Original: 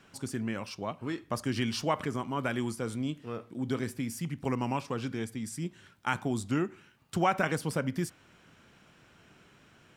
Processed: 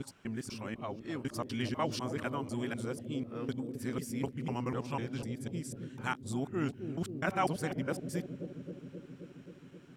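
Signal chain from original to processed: local time reversal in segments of 0.249 s; analogue delay 0.264 s, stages 1024, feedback 78%, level -7.5 dB; gain -4.5 dB

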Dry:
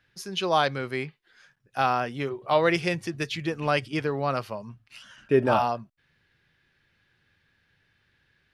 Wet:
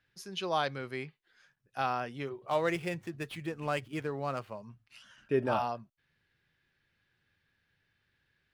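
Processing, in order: 2.47–4.61 median filter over 9 samples; gain -8 dB

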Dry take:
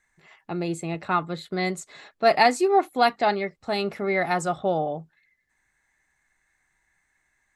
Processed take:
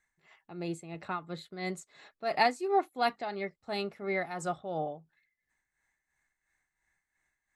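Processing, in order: tremolo 2.9 Hz, depth 65%; gain -7 dB

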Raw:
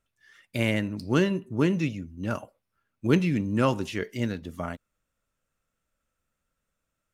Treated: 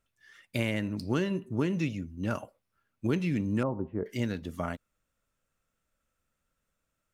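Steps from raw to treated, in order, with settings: compressor 4:1, threshold -25 dBFS, peak gain reduction 9 dB; 3.63–4.06 LPF 1000 Hz 24 dB/oct

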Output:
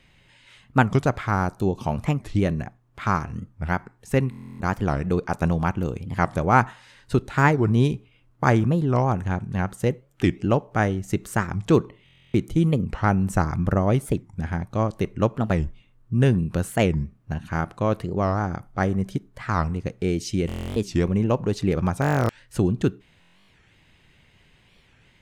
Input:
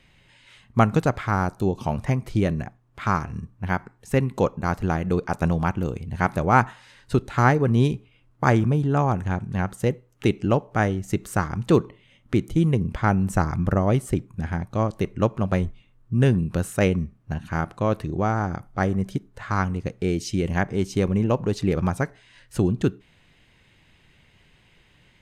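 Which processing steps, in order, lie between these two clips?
stuck buffer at 4.3/12.04/20.47/22/23.2, samples 1024, times 12; record warp 45 rpm, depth 250 cents

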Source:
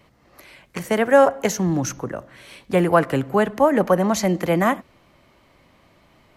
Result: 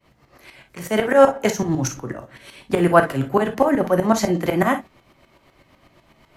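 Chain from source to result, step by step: tremolo saw up 8 Hz, depth 95%; non-linear reverb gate 80 ms flat, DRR 6 dB; gain +4.5 dB

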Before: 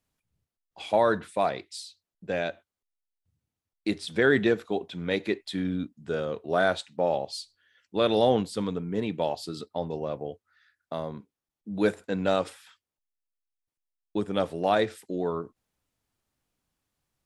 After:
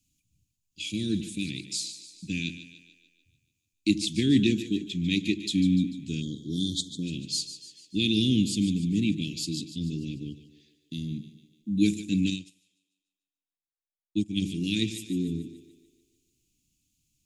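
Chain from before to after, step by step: Chebyshev band-stop 310–2500 Hz, order 4; bell 6800 Hz +10 dB 0.26 oct; split-band echo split 340 Hz, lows 81 ms, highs 0.147 s, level -12 dB; 6.22–7.03 spectral delete 650–3100 Hz; 12.3–14.42 upward expander 2.5:1, over -45 dBFS; gain +6.5 dB

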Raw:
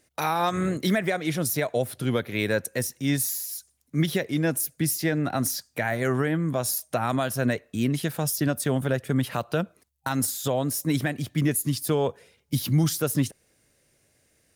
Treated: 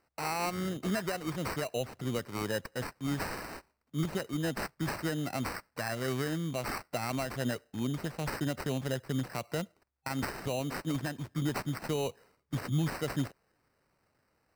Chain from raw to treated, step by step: sample-and-hold 13×; gain -8.5 dB

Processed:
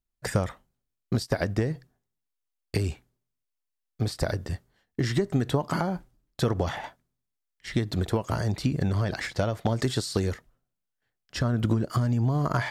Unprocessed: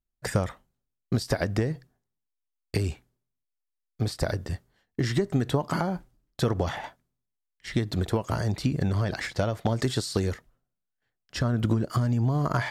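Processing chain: 1.14–1.67 gate -30 dBFS, range -14 dB

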